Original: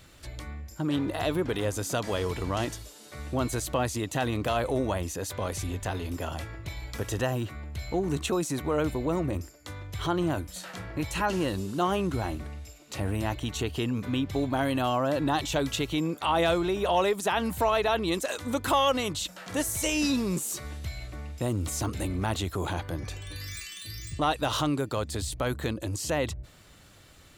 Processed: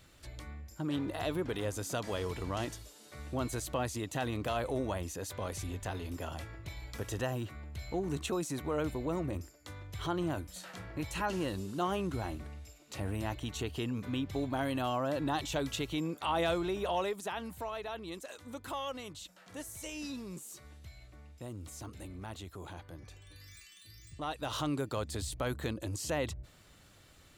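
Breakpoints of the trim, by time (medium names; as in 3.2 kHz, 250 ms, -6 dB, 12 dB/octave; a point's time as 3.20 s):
16.77 s -6.5 dB
17.69 s -15 dB
24.04 s -15 dB
24.76 s -5.5 dB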